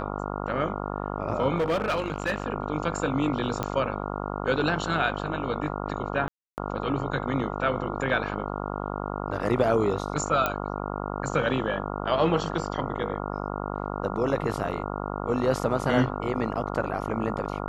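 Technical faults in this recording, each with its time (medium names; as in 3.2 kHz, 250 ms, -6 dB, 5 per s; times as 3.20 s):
buzz 50 Hz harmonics 28 -32 dBFS
1.58–2.44 s: clipped -21 dBFS
3.63 s: pop -14 dBFS
6.28–6.58 s: dropout 299 ms
10.46 s: pop -10 dBFS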